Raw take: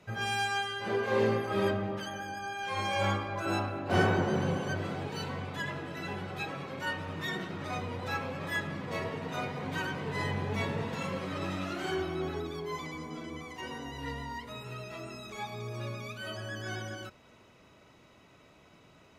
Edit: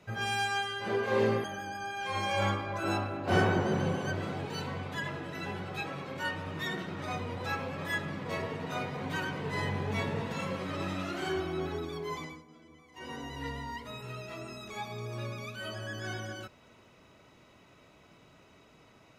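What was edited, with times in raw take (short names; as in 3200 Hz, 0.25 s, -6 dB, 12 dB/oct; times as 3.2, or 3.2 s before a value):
1.44–2.06 cut
12.83–13.75 dip -15 dB, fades 0.22 s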